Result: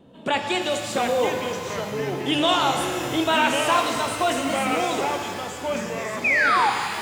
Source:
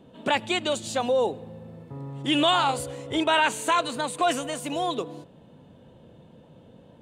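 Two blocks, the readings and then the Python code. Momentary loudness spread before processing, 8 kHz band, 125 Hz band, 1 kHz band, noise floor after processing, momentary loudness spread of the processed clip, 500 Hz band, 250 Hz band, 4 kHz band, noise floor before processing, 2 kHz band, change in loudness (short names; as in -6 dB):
17 LU, +4.0 dB, +3.0 dB, +4.5 dB, -34 dBFS, 9 LU, +3.5 dB, +3.5 dB, +2.5 dB, -53 dBFS, +7.0 dB, +2.5 dB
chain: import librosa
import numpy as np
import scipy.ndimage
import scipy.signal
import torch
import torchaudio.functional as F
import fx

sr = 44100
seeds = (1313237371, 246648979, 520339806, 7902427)

y = fx.wow_flutter(x, sr, seeds[0], rate_hz=2.1, depth_cents=22.0)
y = fx.echo_pitch(y, sr, ms=635, semitones=-3, count=3, db_per_echo=-6.0)
y = fx.spec_paint(y, sr, seeds[1], shape='fall', start_s=6.24, length_s=0.46, low_hz=770.0, high_hz=2600.0, level_db=-20.0)
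y = fx.rev_shimmer(y, sr, seeds[2], rt60_s=2.4, semitones=12, shimmer_db=-8, drr_db=4.0)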